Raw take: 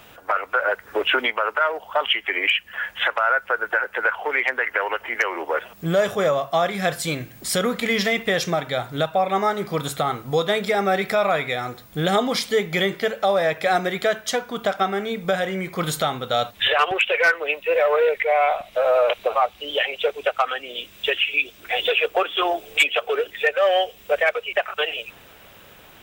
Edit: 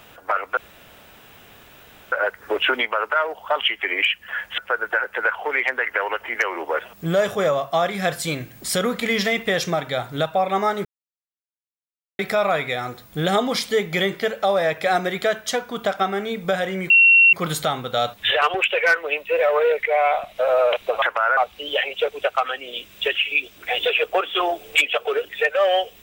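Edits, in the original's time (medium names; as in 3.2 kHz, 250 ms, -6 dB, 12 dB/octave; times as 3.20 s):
0.57 s: insert room tone 1.55 s
3.03–3.38 s: move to 19.39 s
9.65–10.99 s: mute
15.70 s: add tone 2.73 kHz -9 dBFS 0.43 s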